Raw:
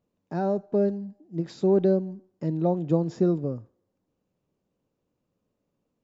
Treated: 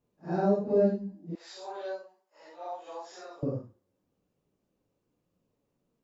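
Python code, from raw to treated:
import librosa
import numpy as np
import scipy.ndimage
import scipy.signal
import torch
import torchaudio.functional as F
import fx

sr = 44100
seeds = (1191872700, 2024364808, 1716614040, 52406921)

y = fx.phase_scramble(x, sr, seeds[0], window_ms=200)
y = fx.highpass(y, sr, hz=780.0, slope=24, at=(1.35, 3.43))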